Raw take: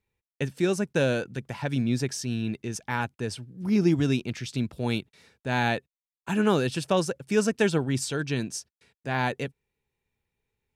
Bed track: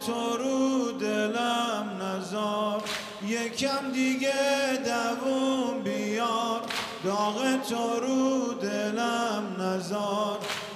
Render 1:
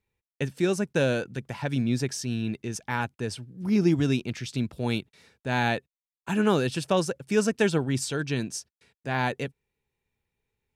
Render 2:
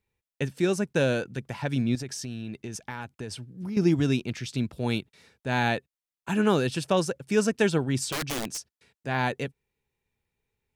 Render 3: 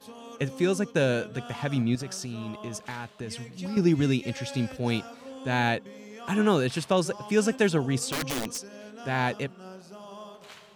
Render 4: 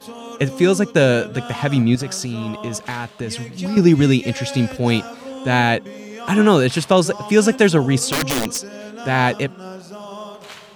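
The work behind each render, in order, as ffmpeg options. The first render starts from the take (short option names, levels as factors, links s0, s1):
-af anull
-filter_complex "[0:a]asettb=1/sr,asplit=3[s0][s1][s2];[s0]atrim=end=1.954[s3];[s1]atrim=start=1.95:end=3.77,asetpts=PTS-STARTPTS,afade=t=in:d=0.004:c=qsin,afade=t=out:st=1.816:d=0.004:c=qsin,acompressor=threshold=0.0282:ratio=6:attack=3.2:release=140:knee=1:detection=peak[s4];[s2]atrim=start=3.766[s5];[s3][s4]acrossfade=d=0.004:c1=hsin:c2=qsin[s6];[s6][s5]acrossfade=d=0.004:c1=qsin:c2=hsin,asettb=1/sr,asplit=3[s7][s8][s9];[s7]atrim=end=8.124[s10];[s8]atrim=start=8.12:end=8.58,asetpts=PTS-STARTPTS,afade=t=in:d=0.004:c=qsin,afade=t=out:st=0.456:d=0.004:c=qsin,aeval=exprs='(mod(17.8*val(0)+1,2)-1)/17.8':c=same[s11];[s9]atrim=start=8.576[s12];[s10][s11]acrossfade=d=0.004:c1=hsin:c2=qsin[s13];[s13][s12]acrossfade=d=0.004:c1=qsin:c2=hsin"
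-filter_complex "[1:a]volume=0.168[s0];[0:a][s0]amix=inputs=2:normalize=0"
-af "volume=3.16,alimiter=limit=0.794:level=0:latency=1"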